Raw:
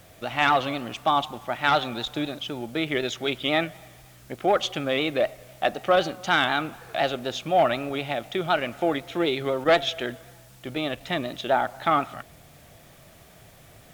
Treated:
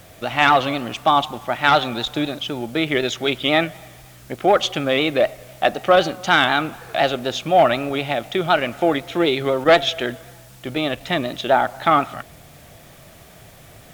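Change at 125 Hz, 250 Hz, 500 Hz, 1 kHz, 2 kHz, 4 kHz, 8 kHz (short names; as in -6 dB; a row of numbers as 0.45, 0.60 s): +6.0, +6.0, +6.0, +6.0, +6.0, +6.0, +6.0 dB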